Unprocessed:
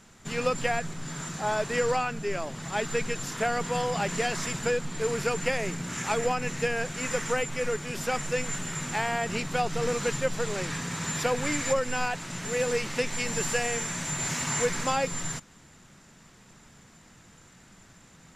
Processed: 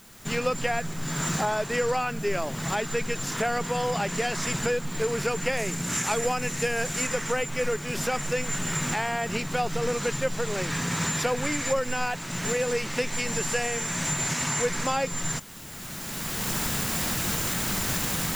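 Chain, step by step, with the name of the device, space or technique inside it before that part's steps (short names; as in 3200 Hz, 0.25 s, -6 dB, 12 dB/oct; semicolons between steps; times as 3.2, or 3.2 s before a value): 5.57–7.07 high shelf 7700 Hz +12 dB; cheap recorder with automatic gain (white noise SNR 25 dB; recorder AGC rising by 16 dB/s)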